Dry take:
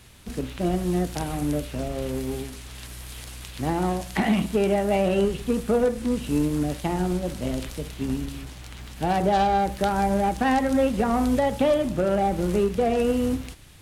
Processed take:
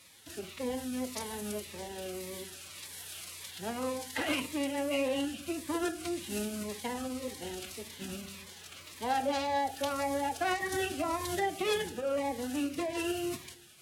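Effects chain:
phase-vocoder pitch shift with formants kept +6 semitones
high-pass filter 860 Hz 6 dB per octave
convolution reverb RT60 0.65 s, pre-delay 4 ms, DRR 12 dB
phaser whose notches keep moving one way falling 1.8 Hz
level −2 dB

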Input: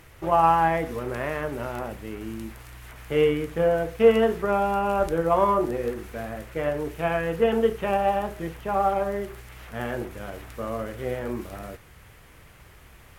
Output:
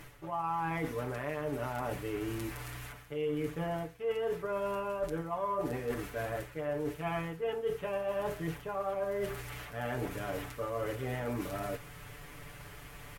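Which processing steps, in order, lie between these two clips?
comb filter 6.9 ms, depth 91%
reversed playback
downward compressor 8 to 1, threshold −32 dBFS, peak gain reduction 23.5 dB
reversed playback

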